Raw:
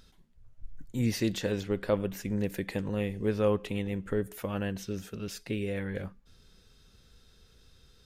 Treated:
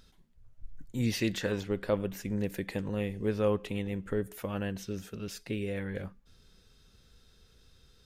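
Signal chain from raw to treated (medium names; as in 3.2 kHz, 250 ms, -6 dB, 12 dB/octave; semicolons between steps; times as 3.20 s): 0.99–1.63 s: peaking EQ 4.7 kHz -> 890 Hz +7.5 dB 0.78 oct; trim -1.5 dB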